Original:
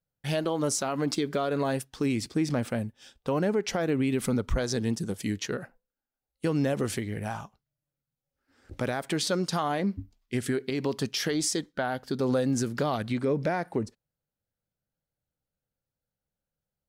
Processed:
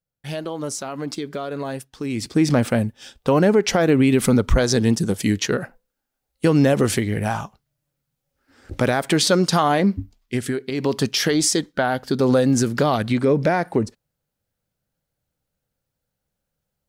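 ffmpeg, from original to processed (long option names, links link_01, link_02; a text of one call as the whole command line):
ffmpeg -i in.wav -af "volume=17.5dB,afade=type=in:start_time=2.07:duration=0.4:silence=0.281838,afade=type=out:start_time=9.78:duration=0.87:silence=0.375837,afade=type=in:start_time=10.65:duration=0.3:silence=0.446684" out.wav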